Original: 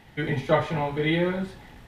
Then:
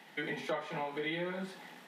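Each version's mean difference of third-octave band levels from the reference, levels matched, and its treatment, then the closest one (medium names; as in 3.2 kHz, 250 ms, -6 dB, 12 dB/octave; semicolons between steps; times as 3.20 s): 7.5 dB: steep high-pass 160 Hz 72 dB/octave; bass shelf 370 Hz -8.5 dB; compression 4:1, threshold -35 dBFS, peak gain reduction 14.5 dB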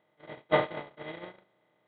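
11.5 dB: spectral levelling over time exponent 0.2; high-pass 250 Hz 6 dB/octave; gate -15 dBFS, range -46 dB; brick-wall FIR low-pass 4.5 kHz; trim -2.5 dB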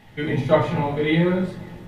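3.0 dB: peaking EQ 110 Hz +8.5 dB 0.35 oct; band-stop 1.5 kHz, Q 29; bucket-brigade echo 134 ms, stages 2048, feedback 78%, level -23 dB; simulated room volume 220 m³, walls furnished, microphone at 1.4 m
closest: third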